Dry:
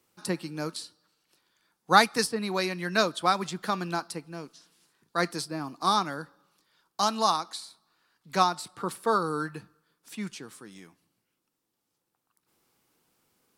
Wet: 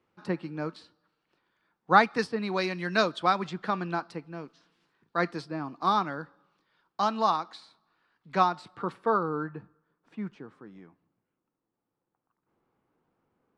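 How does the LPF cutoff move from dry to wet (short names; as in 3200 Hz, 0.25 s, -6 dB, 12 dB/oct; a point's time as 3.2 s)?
1.94 s 2200 Hz
2.8 s 5000 Hz
3.7 s 2700 Hz
8.82 s 2700 Hz
9.37 s 1300 Hz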